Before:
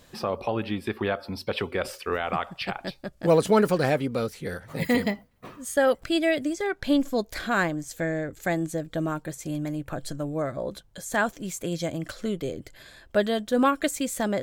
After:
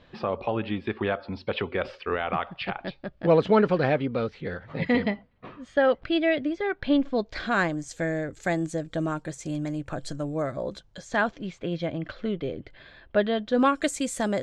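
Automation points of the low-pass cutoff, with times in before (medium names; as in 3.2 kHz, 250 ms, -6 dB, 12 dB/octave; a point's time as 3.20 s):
low-pass 24 dB/octave
7.13 s 3.7 kHz
7.76 s 8.1 kHz
10.60 s 8.1 kHz
11.61 s 3.6 kHz
13.36 s 3.6 kHz
13.88 s 9.5 kHz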